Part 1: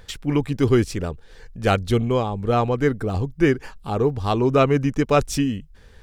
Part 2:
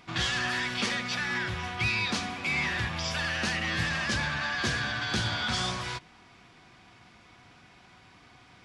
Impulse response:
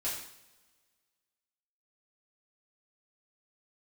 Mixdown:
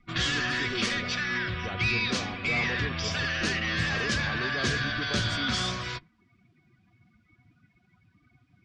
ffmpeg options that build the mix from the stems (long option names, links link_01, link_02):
-filter_complex "[0:a]alimiter=limit=-14dB:level=0:latency=1,volume=-14.5dB[link_01];[1:a]equalizer=frequency=850:width=4.8:gain=-11.5,volume=1.5dB[link_02];[link_01][link_02]amix=inputs=2:normalize=0,afftdn=noise_reduction=23:noise_floor=-46"